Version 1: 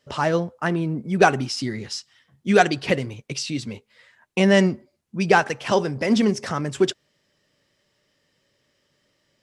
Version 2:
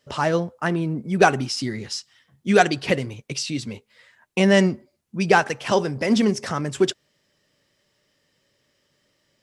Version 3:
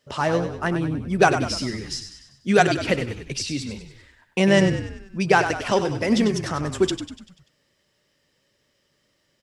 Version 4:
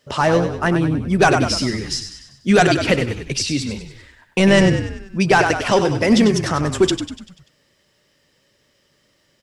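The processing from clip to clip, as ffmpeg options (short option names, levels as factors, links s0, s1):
-af "highshelf=f=8500:g=4.5"
-filter_complex "[0:a]asplit=7[s0][s1][s2][s3][s4][s5][s6];[s1]adelay=97,afreqshift=-39,volume=0.355[s7];[s2]adelay=194,afreqshift=-78,volume=0.182[s8];[s3]adelay=291,afreqshift=-117,volume=0.0923[s9];[s4]adelay=388,afreqshift=-156,volume=0.0473[s10];[s5]adelay=485,afreqshift=-195,volume=0.024[s11];[s6]adelay=582,afreqshift=-234,volume=0.0123[s12];[s0][s7][s8][s9][s10][s11][s12]amix=inputs=7:normalize=0,volume=0.891"
-af "apsyclip=4.47,volume=0.473"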